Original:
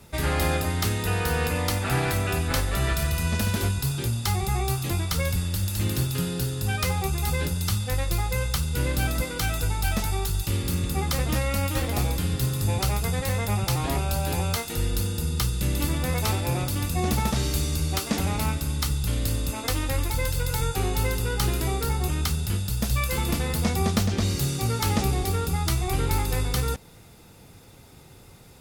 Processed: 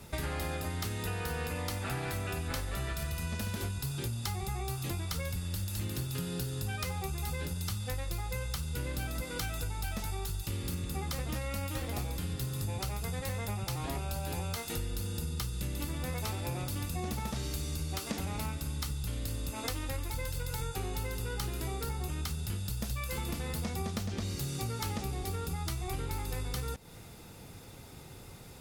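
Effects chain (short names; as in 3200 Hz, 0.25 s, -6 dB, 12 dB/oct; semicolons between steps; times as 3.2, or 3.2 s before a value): compressor, threshold -33 dBFS, peak gain reduction 14.5 dB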